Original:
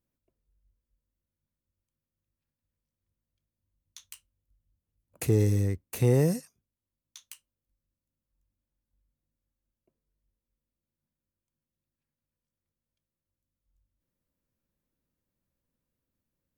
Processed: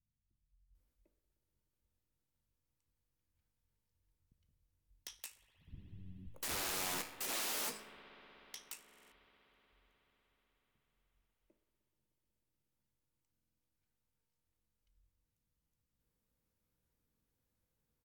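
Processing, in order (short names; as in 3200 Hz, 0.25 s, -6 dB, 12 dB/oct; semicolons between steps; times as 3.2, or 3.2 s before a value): rattling part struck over -36 dBFS, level -16 dBFS; in parallel at -2 dB: compressor 12:1, threshold -31 dBFS, peak gain reduction 14.5 dB; on the sum: wrapped overs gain 19 dB; resonator 58 Hz, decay 0.44 s, harmonics all, mix 50%; wrapped overs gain 33 dB; bands offset in time lows, highs 0.69 s, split 210 Hz; on a send at -11.5 dB: reverb RT60 5.4 s, pre-delay 56 ms; on the sum: speed mistake 48 kHz file played as 44.1 kHz; stuck buffer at 8.84/13.32, samples 2048, times 5; gain -1 dB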